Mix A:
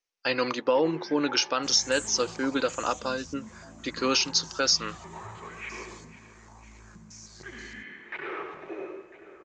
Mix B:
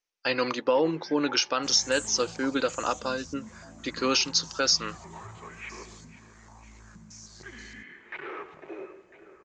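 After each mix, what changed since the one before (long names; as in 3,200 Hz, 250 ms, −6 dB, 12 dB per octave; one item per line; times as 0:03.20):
first sound: send −9.0 dB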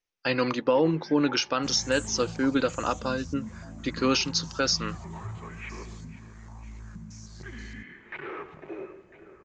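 master: add bass and treble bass +10 dB, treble −4 dB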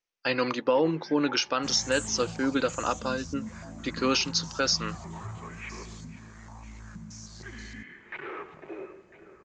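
second sound +4.0 dB
master: add low-shelf EQ 190 Hz −8 dB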